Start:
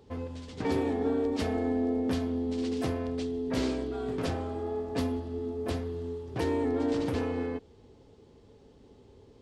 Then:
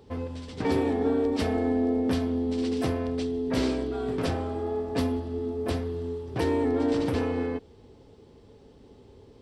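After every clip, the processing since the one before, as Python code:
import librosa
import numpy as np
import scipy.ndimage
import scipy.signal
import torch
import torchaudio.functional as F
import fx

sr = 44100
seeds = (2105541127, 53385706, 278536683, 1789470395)

y = fx.notch(x, sr, hz=6700.0, q=11.0)
y = F.gain(torch.from_numpy(y), 3.5).numpy()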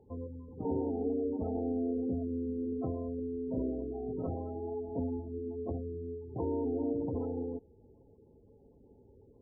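y = fx.wiener(x, sr, points=15)
y = scipy.signal.sosfilt(scipy.signal.butter(2, 1500.0, 'lowpass', fs=sr, output='sos'), y)
y = fx.spec_gate(y, sr, threshold_db=-20, keep='strong')
y = F.gain(torch.from_numpy(y), -7.5).numpy()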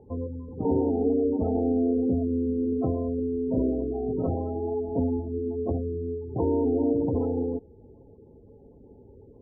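y = scipy.signal.sosfilt(scipy.signal.butter(2, 1200.0, 'lowpass', fs=sr, output='sos'), x)
y = F.gain(torch.from_numpy(y), 9.0).numpy()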